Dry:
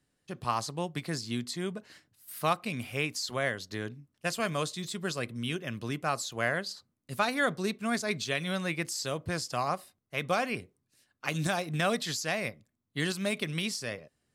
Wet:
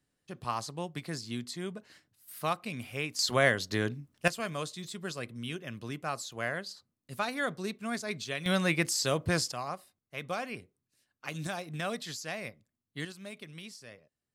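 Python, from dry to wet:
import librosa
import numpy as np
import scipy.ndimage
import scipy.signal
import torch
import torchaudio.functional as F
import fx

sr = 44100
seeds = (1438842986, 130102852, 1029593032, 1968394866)

y = fx.gain(x, sr, db=fx.steps((0.0, -3.5), (3.19, 6.0), (4.28, -4.5), (8.46, 4.5), (9.52, -6.5), (13.05, -13.5)))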